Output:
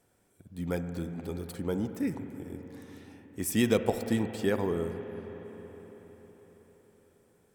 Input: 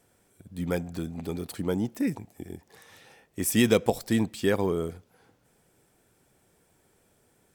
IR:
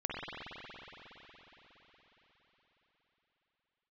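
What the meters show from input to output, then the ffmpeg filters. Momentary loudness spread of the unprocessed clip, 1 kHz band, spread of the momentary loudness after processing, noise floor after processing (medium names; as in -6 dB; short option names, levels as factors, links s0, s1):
20 LU, -3.5 dB, 20 LU, -69 dBFS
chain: -filter_complex "[0:a]asplit=2[s0][s1];[1:a]atrim=start_sample=2205,lowpass=2300[s2];[s1][s2]afir=irnorm=-1:irlink=0,volume=0.282[s3];[s0][s3]amix=inputs=2:normalize=0,volume=0.531"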